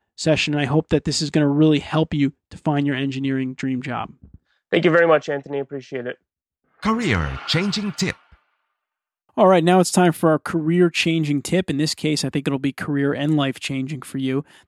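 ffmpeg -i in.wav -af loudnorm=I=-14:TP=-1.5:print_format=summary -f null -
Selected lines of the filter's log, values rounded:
Input Integrated:    -20.8 LUFS
Input True Peak:      -2.4 dBTP
Input LRA:             3.9 LU
Input Threshold:     -31.1 LUFS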